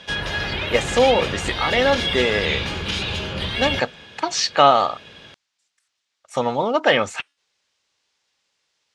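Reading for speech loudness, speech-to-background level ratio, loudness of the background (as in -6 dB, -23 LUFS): -20.5 LUFS, 3.0 dB, -23.5 LUFS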